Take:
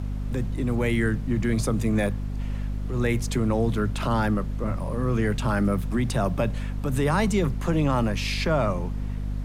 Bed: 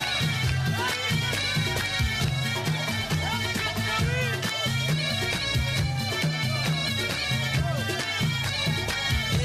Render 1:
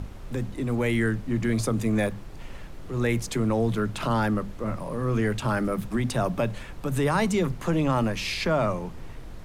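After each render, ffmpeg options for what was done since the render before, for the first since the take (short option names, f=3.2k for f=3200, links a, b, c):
-af "bandreject=f=50:t=h:w=6,bandreject=f=100:t=h:w=6,bandreject=f=150:t=h:w=6,bandreject=f=200:t=h:w=6,bandreject=f=250:t=h:w=6"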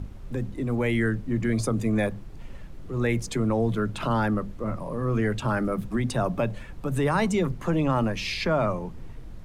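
-af "afftdn=nr=7:nf=-40"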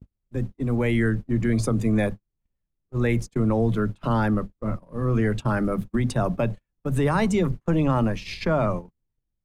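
-af "agate=range=-45dB:threshold=-29dB:ratio=16:detection=peak,lowshelf=f=330:g=4"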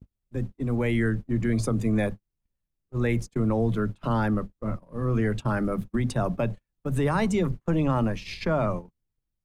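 -af "volume=-2.5dB"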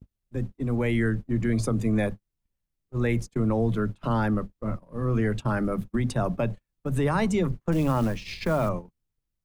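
-filter_complex "[0:a]asettb=1/sr,asplit=3[a][b][c];[a]atrim=end=7.724[d];[b]atrim=start=7.72:end=8.69,asetpts=PTS-STARTPTS,afade=t=in:d=0.004:c=qsin,afade=t=out:st=0.966:d=0.004:c=qsin,acrusher=bits=6:mode=log:mix=0:aa=0.000001[e];[c]atrim=start=8.686[f];[d][e]acrossfade=d=0.004:c1=hsin:c2=qsin[g];[g][f]acrossfade=d=0.004:c1=qsin:c2=hsin"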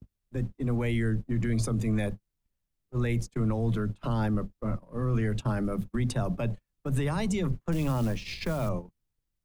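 -filter_complex "[0:a]acrossover=split=150|990|2500[a][b][c][d];[b]alimiter=level_in=2dB:limit=-24dB:level=0:latency=1,volume=-2dB[e];[c]acompressor=threshold=-44dB:ratio=6[f];[a][e][f][d]amix=inputs=4:normalize=0"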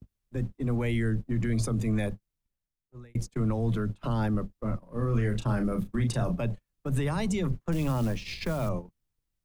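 -filter_complex "[0:a]asettb=1/sr,asplit=3[a][b][c];[a]atrim=end=4.814[d];[b]atrim=start=4.81:end=6.41,asetpts=PTS-STARTPTS,afade=t=in:d=0.004:c=qsin,afade=t=out:st=1.596:d=0.004:c=qsin,asplit=2[e][f];[f]adelay=34,volume=-7dB[g];[e][g]amix=inputs=2:normalize=0,atrim=end_sample=70560[h];[c]atrim=start=6.406[i];[d][h]acrossfade=d=0.004:c1=hsin:c2=qsin[j];[j][i]acrossfade=d=0.004:c1=qsin:c2=hsin,asplit=2[k][l];[k]atrim=end=3.15,asetpts=PTS-STARTPTS,afade=t=out:st=2.05:d=1.1[m];[l]atrim=start=3.15,asetpts=PTS-STARTPTS,afade=t=in:d=0.004:c=hsin[n];[m][n]concat=n=2:v=0:a=1"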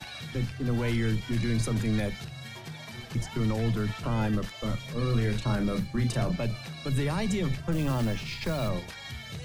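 -filter_complex "[1:a]volume=-14.5dB[a];[0:a][a]amix=inputs=2:normalize=0"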